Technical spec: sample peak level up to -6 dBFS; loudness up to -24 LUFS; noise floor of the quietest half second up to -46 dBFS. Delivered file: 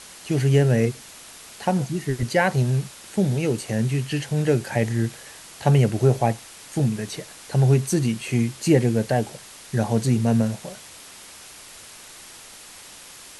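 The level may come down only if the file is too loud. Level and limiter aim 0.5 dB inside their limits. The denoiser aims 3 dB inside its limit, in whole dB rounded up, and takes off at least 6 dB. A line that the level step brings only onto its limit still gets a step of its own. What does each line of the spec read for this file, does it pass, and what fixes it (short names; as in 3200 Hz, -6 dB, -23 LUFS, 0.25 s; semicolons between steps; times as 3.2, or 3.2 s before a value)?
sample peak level -5.0 dBFS: fail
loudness -22.5 LUFS: fail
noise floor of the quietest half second -44 dBFS: fail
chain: denoiser 6 dB, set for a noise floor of -44 dBFS; gain -2 dB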